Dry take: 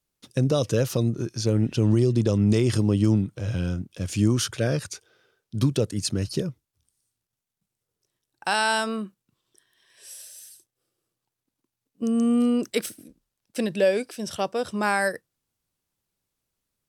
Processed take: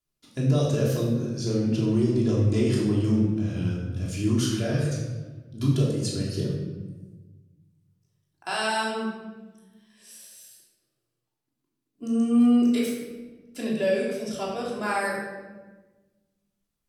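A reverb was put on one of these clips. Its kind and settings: shoebox room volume 830 m³, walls mixed, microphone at 3.1 m; gain -9 dB

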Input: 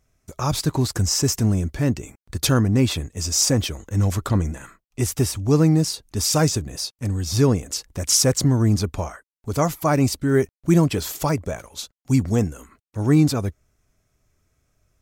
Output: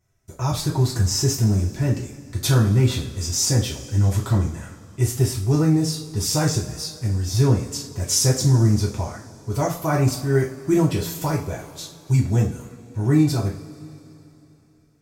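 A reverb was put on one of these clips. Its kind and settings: two-slope reverb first 0.35 s, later 3.2 s, from -21 dB, DRR -4.5 dB; gain -7.5 dB

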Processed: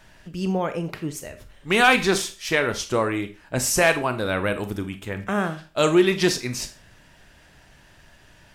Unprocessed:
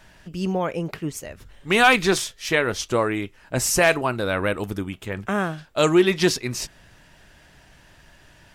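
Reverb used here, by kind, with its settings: Schroeder reverb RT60 0.33 s, combs from 28 ms, DRR 9.5 dB; gain -1 dB

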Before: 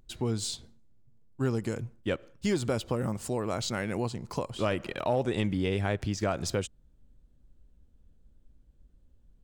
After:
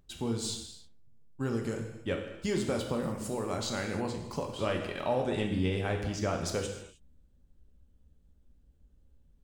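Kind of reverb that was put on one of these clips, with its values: non-linear reverb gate 0.34 s falling, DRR 2 dB; gain -3.5 dB

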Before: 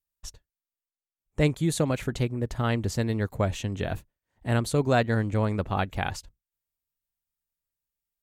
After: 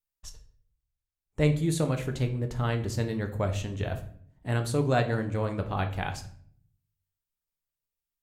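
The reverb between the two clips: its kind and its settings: shoebox room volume 83 m³, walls mixed, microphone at 0.41 m; gain -4 dB

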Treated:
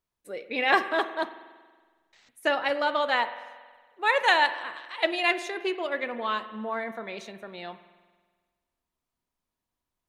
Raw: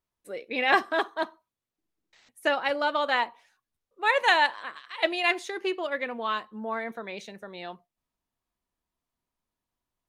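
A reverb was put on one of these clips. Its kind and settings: spring tank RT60 1.5 s, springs 46 ms, chirp 50 ms, DRR 12 dB

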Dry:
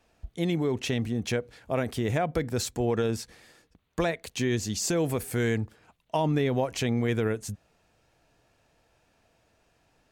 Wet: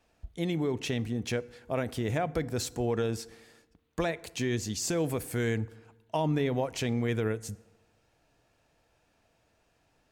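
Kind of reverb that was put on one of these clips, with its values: FDN reverb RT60 1.2 s, low-frequency decay 1×, high-frequency decay 0.55×, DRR 18 dB; gain -3 dB

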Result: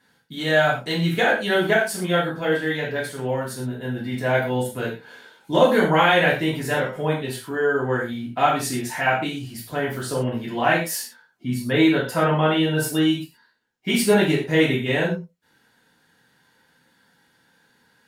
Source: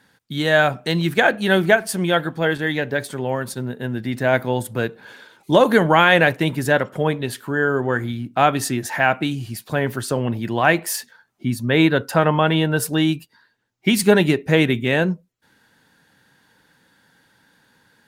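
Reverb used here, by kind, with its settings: non-linear reverb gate 0.15 s falling, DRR -5.5 dB; gain -9 dB

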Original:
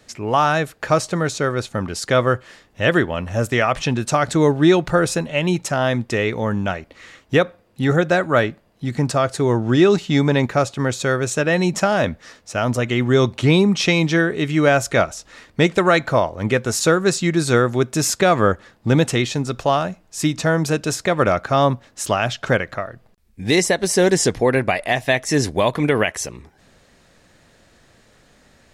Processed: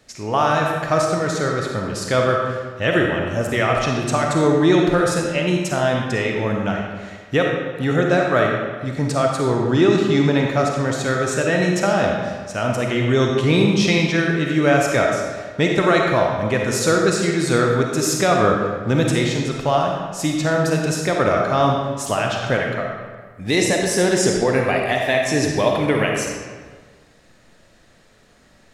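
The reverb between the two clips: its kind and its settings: digital reverb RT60 1.5 s, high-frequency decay 0.75×, pre-delay 10 ms, DRR 0 dB; gain -3 dB

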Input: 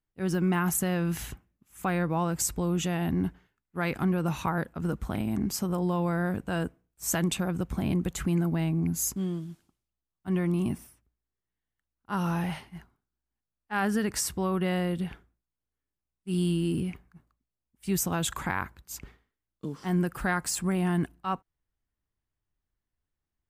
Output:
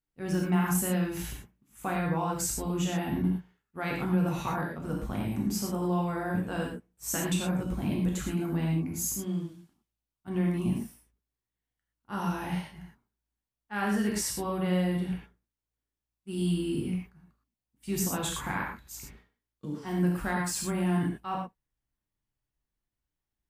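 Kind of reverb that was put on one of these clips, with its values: non-linear reverb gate 0.14 s flat, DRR -2 dB; gain -5.5 dB

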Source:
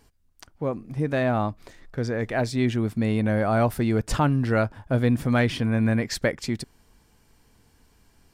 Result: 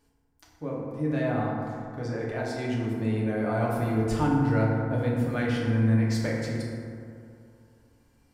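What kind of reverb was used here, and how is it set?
FDN reverb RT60 2.5 s, low-frequency decay 1×, high-frequency decay 0.35×, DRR -5 dB; gain -11 dB

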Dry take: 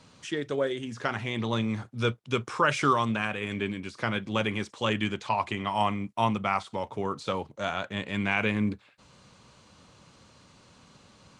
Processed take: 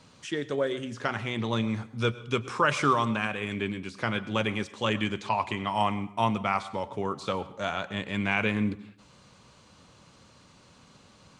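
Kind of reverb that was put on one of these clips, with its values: plate-style reverb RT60 0.58 s, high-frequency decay 0.8×, pre-delay 90 ms, DRR 16.5 dB

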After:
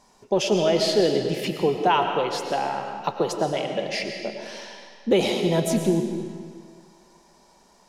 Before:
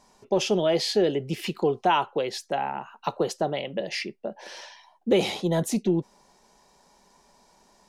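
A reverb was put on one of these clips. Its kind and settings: digital reverb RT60 1.9 s, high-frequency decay 0.9×, pre-delay 70 ms, DRR 4.5 dB; gain +1.5 dB

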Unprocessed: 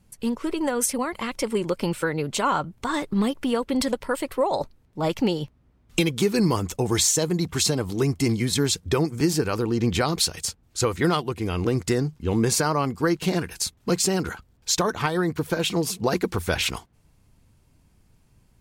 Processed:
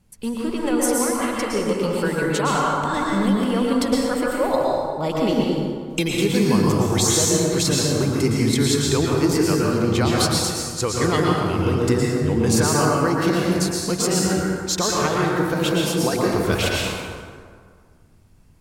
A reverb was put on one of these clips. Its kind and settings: plate-style reverb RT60 1.9 s, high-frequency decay 0.55×, pre-delay 0.1 s, DRR -3.5 dB; gain -1 dB

